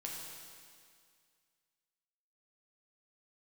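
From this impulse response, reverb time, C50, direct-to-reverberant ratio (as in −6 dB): 2.1 s, 0.5 dB, −3.0 dB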